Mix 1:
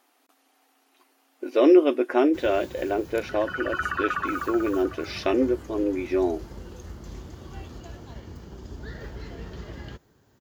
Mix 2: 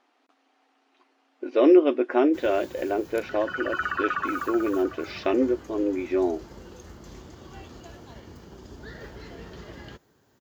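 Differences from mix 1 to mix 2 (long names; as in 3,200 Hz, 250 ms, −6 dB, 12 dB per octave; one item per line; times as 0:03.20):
speech: add high-frequency loss of the air 140 metres
first sound: add low-shelf EQ 130 Hz −9.5 dB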